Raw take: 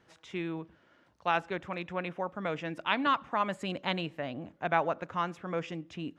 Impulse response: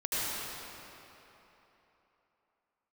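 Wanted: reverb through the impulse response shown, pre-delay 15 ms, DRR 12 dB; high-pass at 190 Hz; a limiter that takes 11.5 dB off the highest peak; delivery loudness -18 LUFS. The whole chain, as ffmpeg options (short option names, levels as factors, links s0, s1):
-filter_complex "[0:a]highpass=190,alimiter=limit=0.0708:level=0:latency=1,asplit=2[s0][s1];[1:a]atrim=start_sample=2205,adelay=15[s2];[s1][s2]afir=irnorm=-1:irlink=0,volume=0.0891[s3];[s0][s3]amix=inputs=2:normalize=0,volume=8.91"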